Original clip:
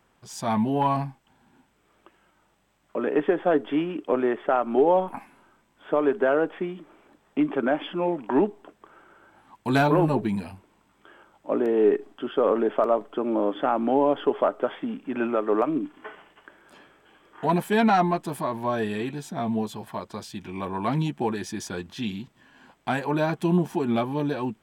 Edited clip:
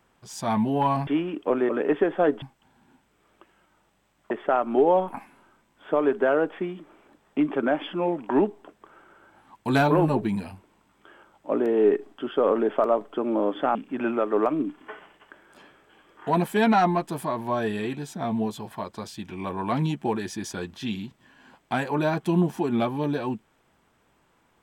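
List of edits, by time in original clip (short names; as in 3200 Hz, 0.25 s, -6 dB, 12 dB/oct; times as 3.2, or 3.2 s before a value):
1.07–2.96 swap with 3.69–4.31
13.75–14.91 cut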